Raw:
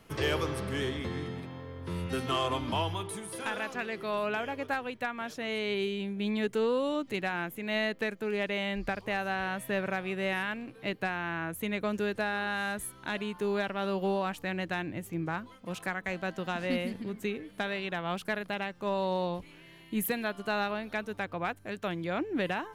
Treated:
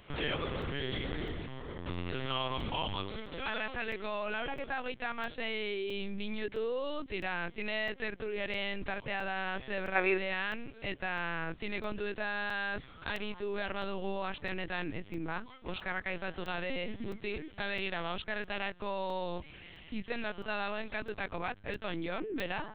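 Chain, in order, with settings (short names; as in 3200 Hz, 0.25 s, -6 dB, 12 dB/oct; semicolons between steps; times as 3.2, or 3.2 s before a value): in parallel at -2.5 dB: negative-ratio compressor -36 dBFS, ratio -0.5; on the sum: LPC vocoder at 8 kHz pitch kept; high shelf 2900 Hz +10 dB; spectral gain 9.95–10.18, 300–2700 Hz +10 dB; crackling interface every 0.66 s, samples 128, zero, from 0.62; gain -7 dB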